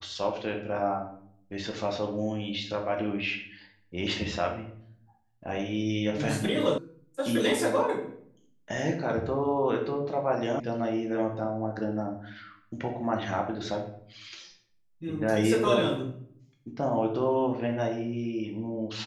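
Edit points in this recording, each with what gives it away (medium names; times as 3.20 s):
6.78 s: sound stops dead
10.60 s: sound stops dead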